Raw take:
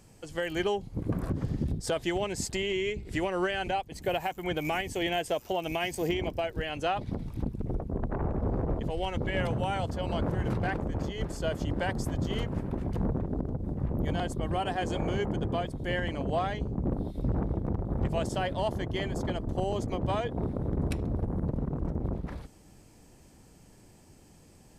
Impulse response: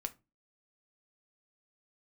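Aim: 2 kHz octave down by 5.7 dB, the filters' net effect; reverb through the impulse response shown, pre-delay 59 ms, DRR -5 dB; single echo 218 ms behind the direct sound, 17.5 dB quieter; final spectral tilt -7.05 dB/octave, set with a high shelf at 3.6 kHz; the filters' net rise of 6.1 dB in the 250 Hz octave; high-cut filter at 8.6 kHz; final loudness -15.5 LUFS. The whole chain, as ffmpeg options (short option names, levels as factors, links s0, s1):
-filter_complex "[0:a]lowpass=8600,equalizer=f=250:t=o:g=8.5,equalizer=f=2000:t=o:g=-6.5,highshelf=f=3600:g=-3.5,aecho=1:1:218:0.133,asplit=2[s0][s1];[1:a]atrim=start_sample=2205,adelay=59[s2];[s1][s2]afir=irnorm=-1:irlink=0,volume=2[s3];[s0][s3]amix=inputs=2:normalize=0,volume=2.24"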